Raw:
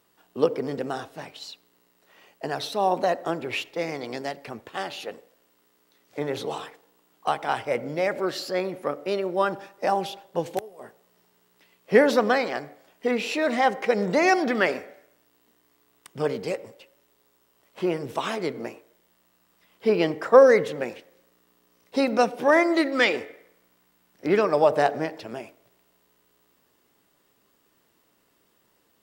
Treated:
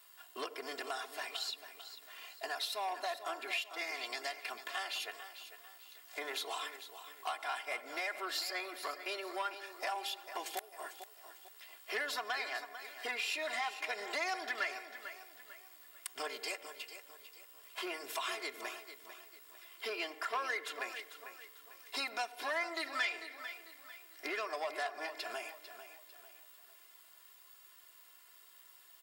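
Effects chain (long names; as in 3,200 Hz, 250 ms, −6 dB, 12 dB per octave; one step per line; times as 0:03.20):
high-pass filter 1,100 Hz 12 dB per octave
high-shelf EQ 7,600 Hz +5.5 dB
notch filter 6,000 Hz, Q 11
comb filter 2.9 ms, depth 99%
downward compressor 3 to 1, threshold −41 dBFS, peak gain reduction 19.5 dB
on a send: repeating echo 447 ms, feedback 38%, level −12 dB
on the sum: saturating transformer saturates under 1,900 Hz
level +2.5 dB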